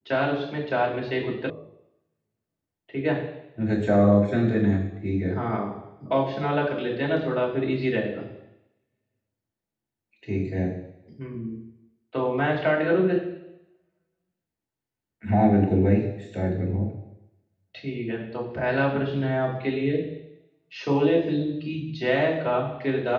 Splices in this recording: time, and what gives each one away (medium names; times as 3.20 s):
1.50 s: sound stops dead